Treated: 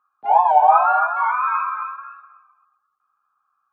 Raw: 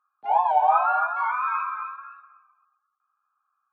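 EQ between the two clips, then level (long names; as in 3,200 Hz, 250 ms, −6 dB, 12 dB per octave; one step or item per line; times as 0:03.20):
high-shelf EQ 2,200 Hz −9.5 dB
+7.5 dB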